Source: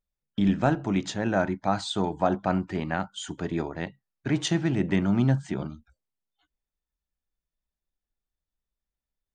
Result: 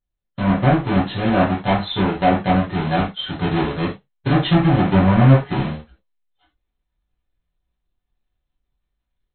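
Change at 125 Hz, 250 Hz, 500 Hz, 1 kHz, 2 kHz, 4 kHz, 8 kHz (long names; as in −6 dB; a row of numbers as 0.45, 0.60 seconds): +11.5 dB, +8.0 dB, +8.0 dB, +10.0 dB, +8.5 dB, +8.0 dB, below −40 dB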